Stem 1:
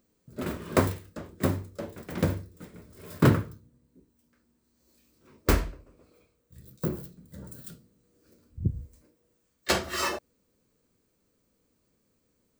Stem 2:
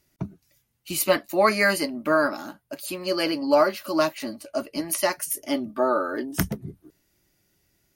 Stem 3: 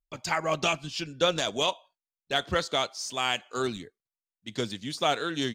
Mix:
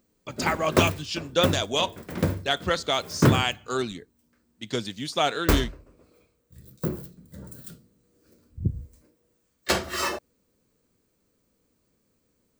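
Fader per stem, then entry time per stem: +1.5 dB, off, +2.0 dB; 0.00 s, off, 0.15 s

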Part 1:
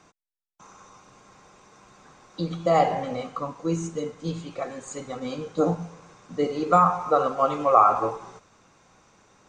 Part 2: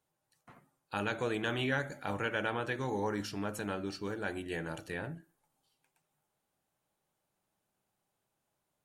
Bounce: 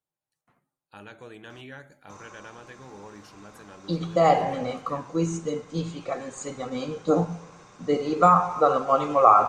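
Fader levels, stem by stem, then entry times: +1.0, -10.5 dB; 1.50, 0.00 s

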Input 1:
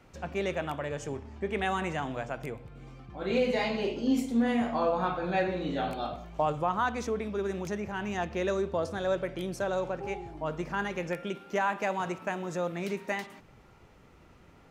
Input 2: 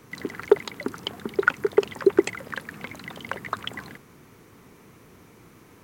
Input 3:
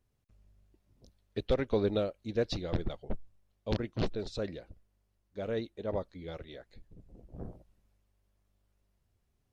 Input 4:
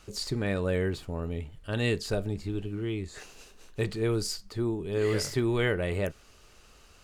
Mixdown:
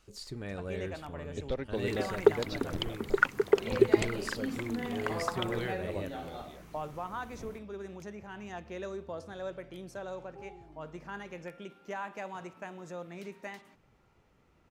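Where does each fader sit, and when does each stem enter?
-10.0, -4.5, -5.5, -10.5 dB; 0.35, 1.75, 0.00, 0.00 s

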